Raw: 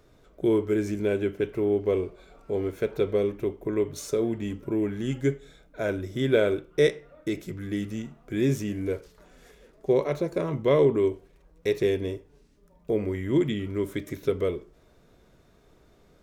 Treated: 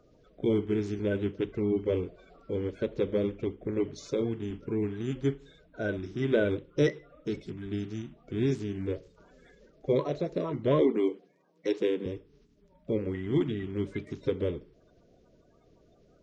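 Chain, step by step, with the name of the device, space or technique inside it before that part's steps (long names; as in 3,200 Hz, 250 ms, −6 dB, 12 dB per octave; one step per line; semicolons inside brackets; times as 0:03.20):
0:10.81–0:12.06: Butterworth high-pass 170 Hz 36 dB per octave
clip after many re-uploads (low-pass filter 5,700 Hz 24 dB per octave; spectral magnitudes quantised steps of 30 dB)
level −3 dB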